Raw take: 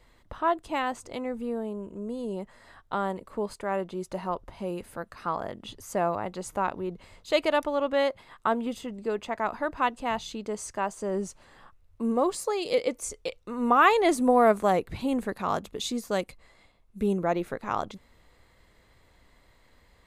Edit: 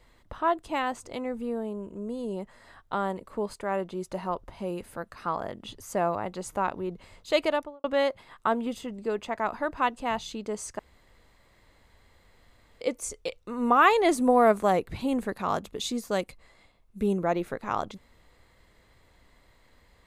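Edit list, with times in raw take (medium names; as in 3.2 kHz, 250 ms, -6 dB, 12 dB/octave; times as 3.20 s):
7.43–7.84 s: studio fade out
10.79–12.81 s: room tone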